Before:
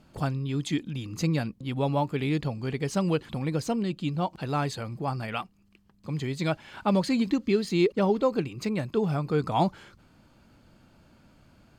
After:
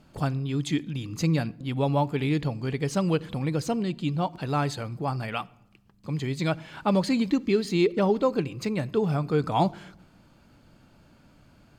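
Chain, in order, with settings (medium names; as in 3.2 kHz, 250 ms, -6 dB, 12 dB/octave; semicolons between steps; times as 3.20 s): simulated room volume 3400 m³, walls furnished, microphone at 0.33 m; trim +1 dB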